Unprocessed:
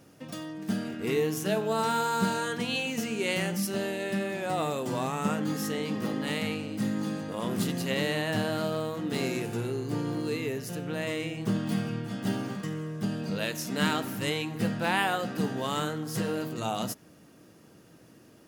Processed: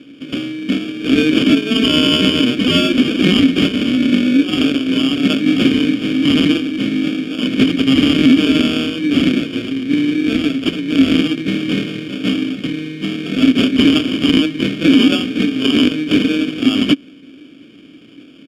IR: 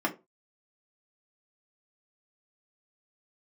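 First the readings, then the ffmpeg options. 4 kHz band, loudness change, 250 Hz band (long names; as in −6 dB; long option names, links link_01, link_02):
+19.0 dB, +15.5 dB, +19.0 dB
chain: -filter_complex "[0:a]tiltshelf=frequency=1100:gain=-9.5,aecho=1:1:6.4:0.68,asplit=2[link_01][link_02];[link_02]aeval=exprs='sgn(val(0))*max(abs(val(0))-0.0188,0)':channel_layout=same,volume=-4.5dB[link_03];[link_01][link_03]amix=inputs=2:normalize=0,acrusher=samples=22:mix=1:aa=0.000001,asplit=3[link_04][link_05][link_06];[link_04]bandpass=frequency=270:width_type=q:width=8,volume=0dB[link_07];[link_05]bandpass=frequency=2290:width_type=q:width=8,volume=-6dB[link_08];[link_06]bandpass=frequency=3010:width_type=q:width=8,volume=-9dB[link_09];[link_07][link_08][link_09]amix=inputs=3:normalize=0,alimiter=level_in=27.5dB:limit=-1dB:release=50:level=0:latency=1,volume=-1dB"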